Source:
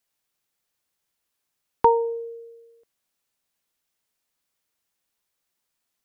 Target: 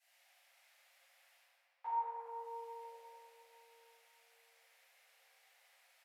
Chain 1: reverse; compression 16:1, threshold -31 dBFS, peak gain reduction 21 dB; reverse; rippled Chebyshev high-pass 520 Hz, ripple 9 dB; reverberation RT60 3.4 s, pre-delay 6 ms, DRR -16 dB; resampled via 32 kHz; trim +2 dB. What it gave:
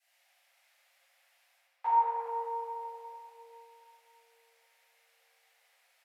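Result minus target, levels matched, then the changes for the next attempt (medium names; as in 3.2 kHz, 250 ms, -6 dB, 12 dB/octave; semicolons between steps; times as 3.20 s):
compression: peak gain reduction -11 dB
change: compression 16:1, threshold -43 dBFS, peak gain reduction 32 dB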